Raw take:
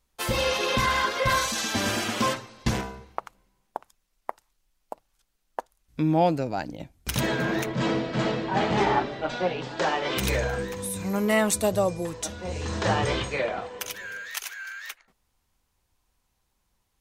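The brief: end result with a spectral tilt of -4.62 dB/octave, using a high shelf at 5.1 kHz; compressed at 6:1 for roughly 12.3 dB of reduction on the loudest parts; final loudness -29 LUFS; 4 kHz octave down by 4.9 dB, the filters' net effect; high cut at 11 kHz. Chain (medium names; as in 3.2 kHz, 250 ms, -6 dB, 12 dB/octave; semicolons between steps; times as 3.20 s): low-pass 11 kHz; peaking EQ 4 kHz -4 dB; treble shelf 5.1 kHz -5.5 dB; compression 6:1, threshold -32 dBFS; trim +7.5 dB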